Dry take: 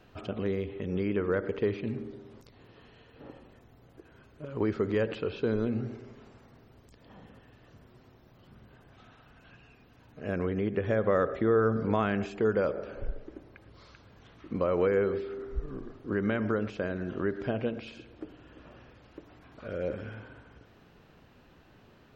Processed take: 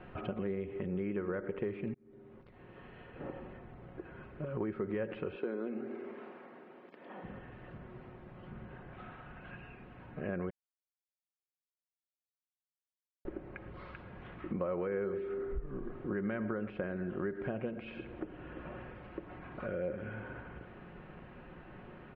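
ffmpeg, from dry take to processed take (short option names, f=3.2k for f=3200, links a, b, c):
-filter_complex "[0:a]asettb=1/sr,asplit=3[a][b][c];[a]atrim=end=5.364[d];[b]atrim=start=5.36:end=7.24,asetpts=PTS-STARTPTS,afade=t=in:d=0.004:c=qsin,afade=t=out:st=1.876:d=0.004:c=qsin,highpass=f=250:w=0.5412,highpass=f=250:w=1.3066[e];[c]atrim=start=7.236[f];[d][e]acrossfade=d=0.004:c1=hsin:c2=qsin[g];[g][f]acrossfade=d=0.004:c1=qsin:c2=hsin,asplit=4[h][i][j][k];[h]atrim=end=1.94,asetpts=PTS-STARTPTS,afade=t=out:st=1.936:d=0.004:c=hsin[l];[i]atrim=start=1.94:end=10.5,asetpts=PTS-STARTPTS,afade=t=in:d=1.38,afade=t=out:st=8.556:d=0.004:c=hsin[m];[j]atrim=start=10.5:end=13.25,asetpts=PTS-STARTPTS,volume=0[n];[k]atrim=start=13.25,asetpts=PTS-STARTPTS,afade=t=in:d=0.004:c=hsin[o];[l][m][n][o]concat=n=4:v=0:a=1,acompressor=threshold=-45dB:ratio=3,lowpass=f=2.5k:w=0.5412,lowpass=f=2.5k:w=1.3066,aecho=1:1:5.5:0.37,volume=6.5dB"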